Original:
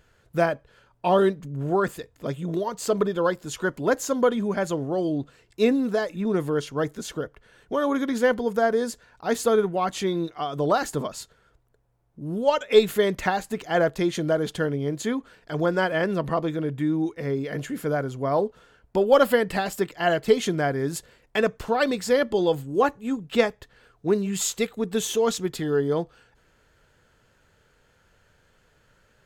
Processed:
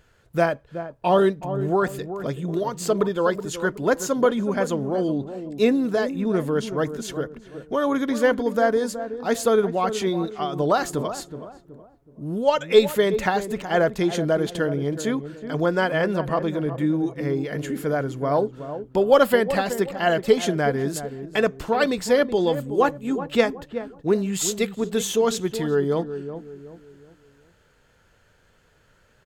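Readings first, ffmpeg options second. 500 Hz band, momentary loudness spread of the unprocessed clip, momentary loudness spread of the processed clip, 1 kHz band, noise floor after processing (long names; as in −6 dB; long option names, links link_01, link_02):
+2.0 dB, 10 LU, 11 LU, +2.0 dB, −60 dBFS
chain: -filter_complex "[0:a]asplit=2[link_01][link_02];[link_02]adelay=373,lowpass=frequency=850:poles=1,volume=-9.5dB,asplit=2[link_03][link_04];[link_04]adelay=373,lowpass=frequency=850:poles=1,volume=0.41,asplit=2[link_05][link_06];[link_06]adelay=373,lowpass=frequency=850:poles=1,volume=0.41,asplit=2[link_07][link_08];[link_08]adelay=373,lowpass=frequency=850:poles=1,volume=0.41[link_09];[link_01][link_03][link_05][link_07][link_09]amix=inputs=5:normalize=0,volume=1.5dB"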